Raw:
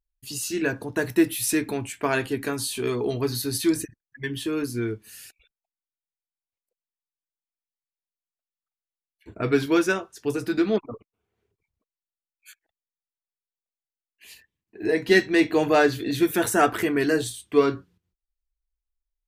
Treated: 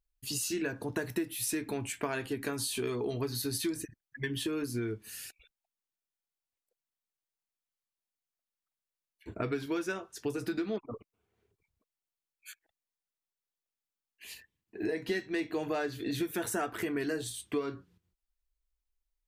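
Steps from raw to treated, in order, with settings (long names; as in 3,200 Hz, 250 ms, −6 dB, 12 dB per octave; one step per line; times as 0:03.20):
downward compressor 6 to 1, threshold −31 dBFS, peak gain reduction 17.5 dB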